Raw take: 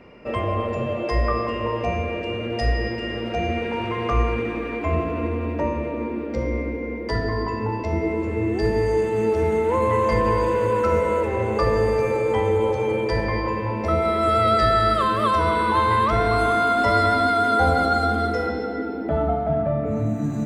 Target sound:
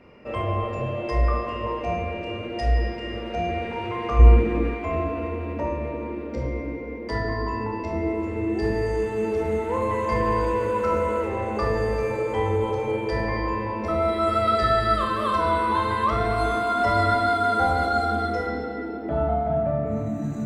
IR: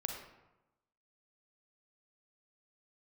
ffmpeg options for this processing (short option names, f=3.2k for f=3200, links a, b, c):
-filter_complex "[0:a]asettb=1/sr,asplit=3[a][b][c];[a]atrim=end=4.194[d];[b]atrim=start=4.19:end=4.7,asetpts=PTS-STARTPTS,afade=t=in:d=0.004:c=qsin,afade=t=out:st=0.506:d=0.004:c=qsin,lowshelf=f=410:g=11.5[e];[c]atrim=start=4.696[f];[d][e]acrossfade=d=0.004:c1=hsin:c2=qsin[g];[g][f]acrossfade=d=0.004:c1=qsin:c2=hsin[h];[1:a]atrim=start_sample=2205,afade=t=out:st=0.17:d=0.01,atrim=end_sample=7938,asetrate=66150,aresample=44100[i];[h][i]afir=irnorm=-1:irlink=0"